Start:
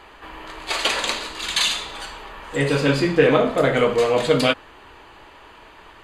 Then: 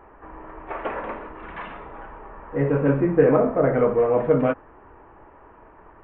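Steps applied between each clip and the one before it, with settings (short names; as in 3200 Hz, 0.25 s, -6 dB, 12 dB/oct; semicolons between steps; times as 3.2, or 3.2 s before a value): Gaussian blur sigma 5.9 samples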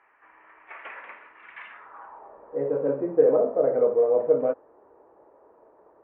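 band-pass sweep 2200 Hz -> 520 Hz, 1.65–2.41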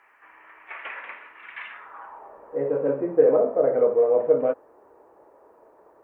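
high shelf 2500 Hz +11 dB; gain +1 dB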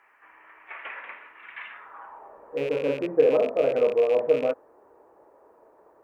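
rattling part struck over -35 dBFS, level -25 dBFS; gain -2 dB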